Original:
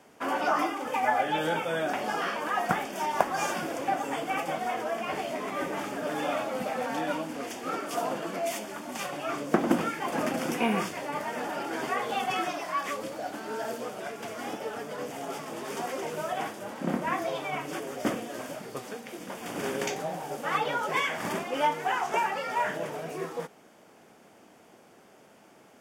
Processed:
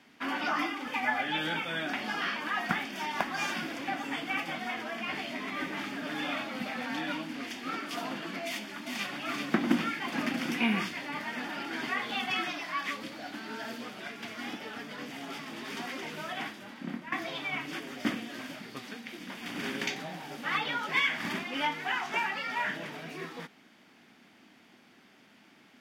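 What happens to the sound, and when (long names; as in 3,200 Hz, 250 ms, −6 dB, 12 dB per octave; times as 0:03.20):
0:08.47–0:09.19: delay throw 390 ms, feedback 55%, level −4.5 dB
0:16.39–0:17.12: fade out, to −12 dB
whole clip: graphic EQ with 10 bands 250 Hz +9 dB, 500 Hz −8 dB, 2,000 Hz +8 dB, 4,000 Hz +11 dB, 8,000 Hz −5 dB; level −6.5 dB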